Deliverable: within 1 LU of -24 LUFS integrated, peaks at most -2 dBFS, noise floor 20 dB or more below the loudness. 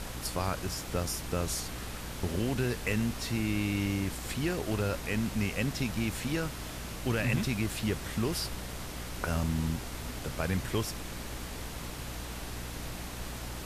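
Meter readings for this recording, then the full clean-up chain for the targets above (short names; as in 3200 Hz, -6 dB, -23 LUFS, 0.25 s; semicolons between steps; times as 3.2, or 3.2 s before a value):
hum 60 Hz; harmonics up to 300 Hz; hum level -40 dBFS; noise floor -41 dBFS; noise floor target -54 dBFS; loudness -33.5 LUFS; peak -15.0 dBFS; loudness target -24.0 LUFS
-> de-hum 60 Hz, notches 5; noise print and reduce 13 dB; gain +9.5 dB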